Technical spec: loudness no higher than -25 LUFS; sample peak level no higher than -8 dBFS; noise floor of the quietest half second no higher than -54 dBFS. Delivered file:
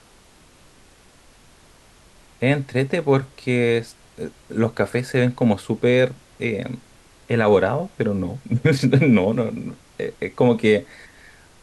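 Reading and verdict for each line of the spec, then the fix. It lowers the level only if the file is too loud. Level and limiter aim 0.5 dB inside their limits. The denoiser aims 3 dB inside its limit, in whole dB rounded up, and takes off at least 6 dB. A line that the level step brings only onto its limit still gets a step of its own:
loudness -20.5 LUFS: fail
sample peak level -5.0 dBFS: fail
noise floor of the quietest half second -51 dBFS: fail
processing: gain -5 dB

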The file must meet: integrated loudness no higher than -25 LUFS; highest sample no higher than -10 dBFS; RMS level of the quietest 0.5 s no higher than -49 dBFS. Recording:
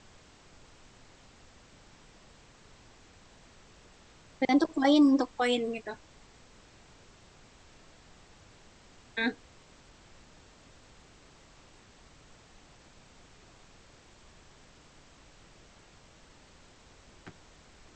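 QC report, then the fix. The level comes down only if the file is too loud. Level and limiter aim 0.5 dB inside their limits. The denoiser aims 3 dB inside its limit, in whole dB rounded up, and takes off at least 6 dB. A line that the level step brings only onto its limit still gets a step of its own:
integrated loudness -27.5 LUFS: OK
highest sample -13.0 dBFS: OK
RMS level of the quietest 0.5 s -57 dBFS: OK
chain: none

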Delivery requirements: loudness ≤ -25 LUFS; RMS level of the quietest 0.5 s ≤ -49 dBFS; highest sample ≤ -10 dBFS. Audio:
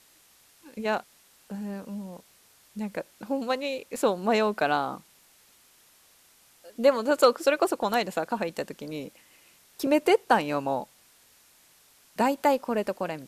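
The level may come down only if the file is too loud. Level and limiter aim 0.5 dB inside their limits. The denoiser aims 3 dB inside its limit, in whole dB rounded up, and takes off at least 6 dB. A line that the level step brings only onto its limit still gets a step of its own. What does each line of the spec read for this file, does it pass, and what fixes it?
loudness -27.0 LUFS: OK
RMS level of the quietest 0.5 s -60 dBFS: OK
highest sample -7.0 dBFS: fail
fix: limiter -10.5 dBFS

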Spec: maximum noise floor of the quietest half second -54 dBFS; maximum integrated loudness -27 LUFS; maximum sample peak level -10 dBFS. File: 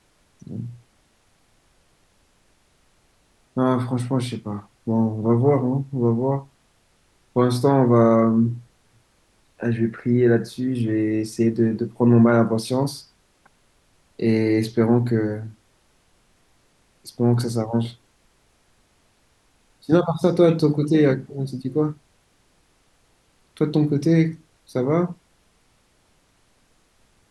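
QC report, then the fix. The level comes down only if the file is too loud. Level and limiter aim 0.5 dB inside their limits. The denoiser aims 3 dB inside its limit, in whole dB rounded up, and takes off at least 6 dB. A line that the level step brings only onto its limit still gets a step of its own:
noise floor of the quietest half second -62 dBFS: OK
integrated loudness -21.0 LUFS: fail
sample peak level -5.5 dBFS: fail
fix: gain -6.5 dB

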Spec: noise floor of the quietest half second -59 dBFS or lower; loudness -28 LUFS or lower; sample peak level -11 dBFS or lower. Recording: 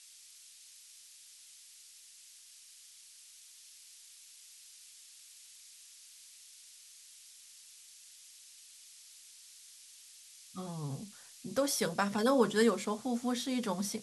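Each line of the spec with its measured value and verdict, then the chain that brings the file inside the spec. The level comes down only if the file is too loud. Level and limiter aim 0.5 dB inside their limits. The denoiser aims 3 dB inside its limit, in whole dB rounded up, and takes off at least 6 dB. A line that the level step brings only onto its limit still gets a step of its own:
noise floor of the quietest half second -57 dBFS: fail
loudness -32.5 LUFS: OK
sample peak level -16.0 dBFS: OK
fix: denoiser 6 dB, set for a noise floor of -57 dBFS

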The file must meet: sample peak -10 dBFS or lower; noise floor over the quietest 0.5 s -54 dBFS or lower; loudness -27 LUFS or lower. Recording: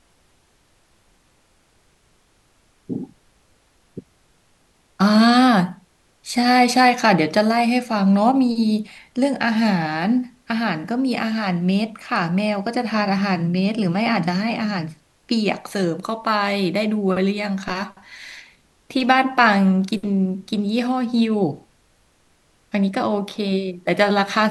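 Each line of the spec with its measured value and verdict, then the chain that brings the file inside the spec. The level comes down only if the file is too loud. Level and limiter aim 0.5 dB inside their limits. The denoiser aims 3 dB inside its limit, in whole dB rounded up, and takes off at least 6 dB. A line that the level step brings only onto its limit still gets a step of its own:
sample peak -2.0 dBFS: fail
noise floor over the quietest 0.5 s -60 dBFS: OK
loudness -19.5 LUFS: fail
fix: gain -8 dB; limiter -10.5 dBFS

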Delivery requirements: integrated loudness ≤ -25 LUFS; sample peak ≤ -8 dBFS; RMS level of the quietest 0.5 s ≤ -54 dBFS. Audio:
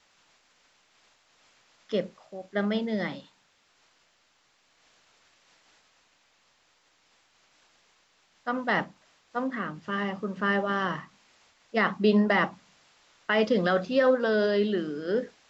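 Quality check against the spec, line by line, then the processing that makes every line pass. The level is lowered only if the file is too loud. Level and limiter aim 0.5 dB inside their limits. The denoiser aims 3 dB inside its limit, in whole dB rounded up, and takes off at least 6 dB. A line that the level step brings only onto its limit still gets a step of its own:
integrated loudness -27.5 LUFS: OK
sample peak -10.5 dBFS: OK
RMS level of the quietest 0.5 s -67 dBFS: OK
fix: none

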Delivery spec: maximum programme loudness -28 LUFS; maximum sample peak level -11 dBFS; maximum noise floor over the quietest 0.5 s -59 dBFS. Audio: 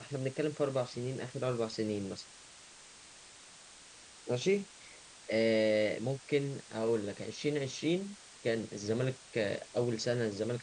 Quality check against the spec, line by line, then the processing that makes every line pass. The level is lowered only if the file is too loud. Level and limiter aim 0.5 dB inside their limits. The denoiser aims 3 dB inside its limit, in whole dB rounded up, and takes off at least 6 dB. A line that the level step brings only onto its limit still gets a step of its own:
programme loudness -34.5 LUFS: OK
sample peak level -18.0 dBFS: OK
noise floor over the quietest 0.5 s -55 dBFS: fail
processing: denoiser 7 dB, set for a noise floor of -55 dBFS

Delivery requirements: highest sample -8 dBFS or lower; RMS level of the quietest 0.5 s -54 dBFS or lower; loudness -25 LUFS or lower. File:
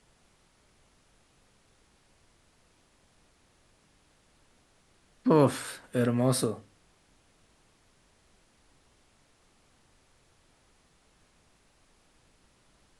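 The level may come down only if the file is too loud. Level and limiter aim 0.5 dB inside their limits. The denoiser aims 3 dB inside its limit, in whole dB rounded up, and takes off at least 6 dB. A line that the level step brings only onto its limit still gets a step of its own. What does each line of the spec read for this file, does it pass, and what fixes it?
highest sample -9.5 dBFS: OK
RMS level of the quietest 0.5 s -65 dBFS: OK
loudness -27.5 LUFS: OK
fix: none

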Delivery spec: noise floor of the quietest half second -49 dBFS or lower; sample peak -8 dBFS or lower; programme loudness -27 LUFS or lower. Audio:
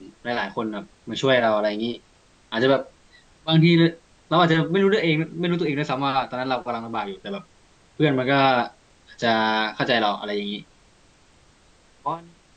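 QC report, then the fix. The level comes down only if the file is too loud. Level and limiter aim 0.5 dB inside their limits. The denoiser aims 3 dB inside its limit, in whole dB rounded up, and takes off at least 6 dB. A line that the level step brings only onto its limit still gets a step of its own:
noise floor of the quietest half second -56 dBFS: OK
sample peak -5.5 dBFS: fail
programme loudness -22.5 LUFS: fail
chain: gain -5 dB

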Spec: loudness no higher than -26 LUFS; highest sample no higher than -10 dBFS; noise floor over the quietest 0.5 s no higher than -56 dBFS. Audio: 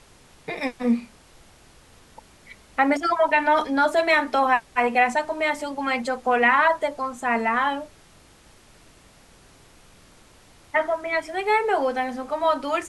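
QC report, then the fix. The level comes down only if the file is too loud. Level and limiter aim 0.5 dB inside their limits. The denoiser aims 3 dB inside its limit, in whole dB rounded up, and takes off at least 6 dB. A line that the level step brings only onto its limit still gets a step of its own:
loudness -22.5 LUFS: fail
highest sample -7.0 dBFS: fail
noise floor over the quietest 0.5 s -53 dBFS: fail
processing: gain -4 dB

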